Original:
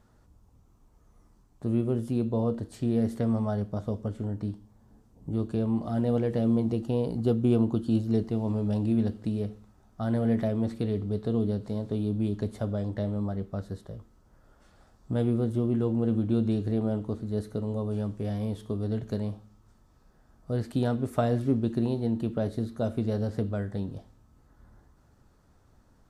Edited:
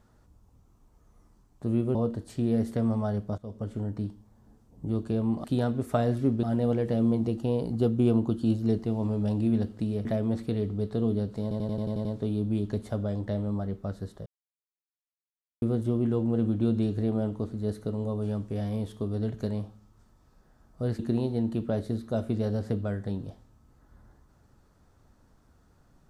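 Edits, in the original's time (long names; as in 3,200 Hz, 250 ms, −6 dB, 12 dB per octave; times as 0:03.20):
0:01.95–0:02.39: remove
0:03.82–0:04.15: fade in, from −19 dB
0:09.50–0:10.37: remove
0:11.74: stutter 0.09 s, 8 plays
0:13.95–0:15.31: silence
0:20.68–0:21.67: move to 0:05.88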